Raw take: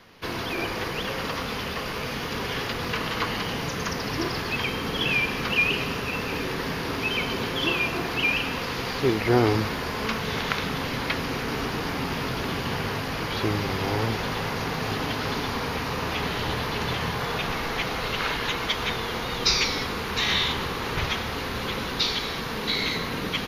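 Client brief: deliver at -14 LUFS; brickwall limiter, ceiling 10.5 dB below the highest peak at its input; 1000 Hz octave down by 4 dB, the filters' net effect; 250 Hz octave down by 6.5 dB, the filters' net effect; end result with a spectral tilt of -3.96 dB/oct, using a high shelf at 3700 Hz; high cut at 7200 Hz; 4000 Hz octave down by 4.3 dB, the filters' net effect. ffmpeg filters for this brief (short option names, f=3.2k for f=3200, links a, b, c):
-af "lowpass=7.2k,equalizer=f=250:t=o:g=-9,equalizer=f=1k:t=o:g=-4.5,highshelf=f=3.7k:g=4,equalizer=f=4k:t=o:g=-7.5,volume=16.5dB,alimiter=limit=-3.5dB:level=0:latency=1"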